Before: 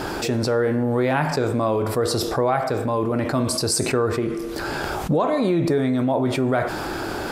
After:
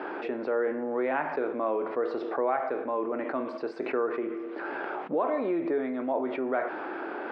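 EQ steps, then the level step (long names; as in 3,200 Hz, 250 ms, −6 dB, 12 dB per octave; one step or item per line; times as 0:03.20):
high-pass filter 280 Hz 24 dB per octave
low-pass filter 2,400 Hz 24 dB per octave
−6.5 dB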